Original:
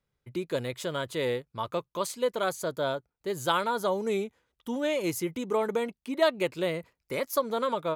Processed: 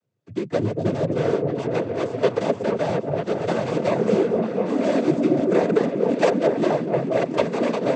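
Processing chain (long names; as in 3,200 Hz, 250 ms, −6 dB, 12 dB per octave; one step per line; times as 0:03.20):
running median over 41 samples
echo whose low-pass opens from repeat to repeat 236 ms, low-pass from 400 Hz, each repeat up 1 octave, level 0 dB
cochlear-implant simulation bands 16
level +8.5 dB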